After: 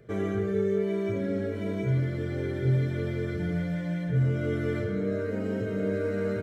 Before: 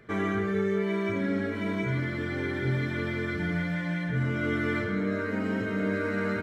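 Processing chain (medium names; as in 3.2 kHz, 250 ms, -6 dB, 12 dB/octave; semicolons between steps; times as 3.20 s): ten-band graphic EQ 125 Hz +6 dB, 250 Hz -6 dB, 500 Hz +7 dB, 1 kHz -10 dB, 2 kHz -7 dB, 4 kHz -4 dB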